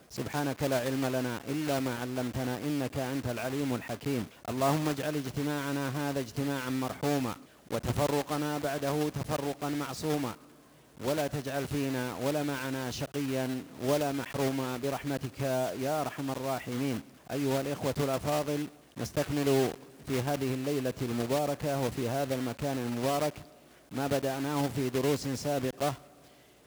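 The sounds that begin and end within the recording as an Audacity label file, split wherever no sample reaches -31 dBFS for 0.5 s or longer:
11.030000	23.290000	sound
23.950000	25.930000	sound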